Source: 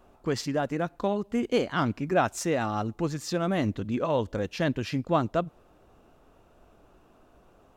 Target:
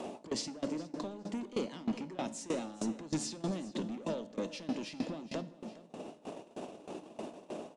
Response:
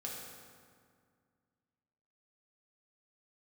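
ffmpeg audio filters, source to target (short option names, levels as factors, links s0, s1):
-filter_complex "[0:a]highpass=f=190:w=0.5412,highpass=f=190:w=1.3066,agate=range=0.1:threshold=0.00126:ratio=16:detection=peak,equalizer=f=1400:t=o:w=0.68:g=-14.5,acompressor=mode=upward:threshold=0.0178:ratio=2.5,alimiter=level_in=2:limit=0.0631:level=0:latency=1:release=211,volume=0.501,acrossover=split=380|3000[s0][s1][s2];[s1]acompressor=threshold=0.00355:ratio=3[s3];[s0][s3][s2]amix=inputs=3:normalize=0,asoftclip=type=tanh:threshold=0.01,aecho=1:1:413|826|1239:0.251|0.0603|0.0145,asplit=2[s4][s5];[1:a]atrim=start_sample=2205,asetrate=52920,aresample=44100[s6];[s5][s6]afir=irnorm=-1:irlink=0,volume=0.631[s7];[s4][s7]amix=inputs=2:normalize=0,aresample=22050,aresample=44100,aeval=exprs='val(0)*pow(10,-20*if(lt(mod(3.2*n/s,1),2*abs(3.2)/1000),1-mod(3.2*n/s,1)/(2*abs(3.2)/1000),(mod(3.2*n/s,1)-2*abs(3.2)/1000)/(1-2*abs(3.2)/1000))/20)':c=same,volume=3.55"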